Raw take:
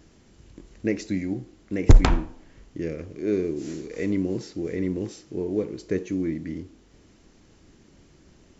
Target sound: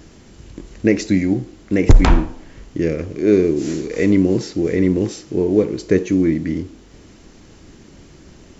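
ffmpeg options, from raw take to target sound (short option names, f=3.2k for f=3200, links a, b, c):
-af "alimiter=level_in=12dB:limit=-1dB:release=50:level=0:latency=1,volume=-1dB"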